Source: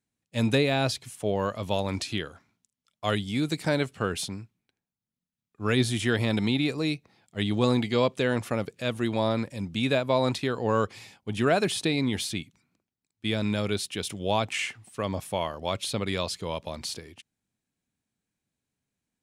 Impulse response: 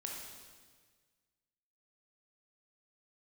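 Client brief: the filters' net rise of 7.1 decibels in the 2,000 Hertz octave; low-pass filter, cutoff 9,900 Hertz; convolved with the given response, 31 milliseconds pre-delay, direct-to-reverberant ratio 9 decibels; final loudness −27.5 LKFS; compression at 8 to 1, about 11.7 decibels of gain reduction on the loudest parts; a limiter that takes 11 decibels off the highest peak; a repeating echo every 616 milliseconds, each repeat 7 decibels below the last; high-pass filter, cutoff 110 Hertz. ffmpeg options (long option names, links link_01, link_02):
-filter_complex "[0:a]highpass=110,lowpass=9900,equalizer=frequency=2000:width_type=o:gain=9,acompressor=threshold=-29dB:ratio=8,alimiter=level_in=2.5dB:limit=-24dB:level=0:latency=1,volume=-2.5dB,aecho=1:1:616|1232|1848|2464|3080:0.447|0.201|0.0905|0.0407|0.0183,asplit=2[link_01][link_02];[1:a]atrim=start_sample=2205,adelay=31[link_03];[link_02][link_03]afir=irnorm=-1:irlink=0,volume=-8dB[link_04];[link_01][link_04]amix=inputs=2:normalize=0,volume=9.5dB"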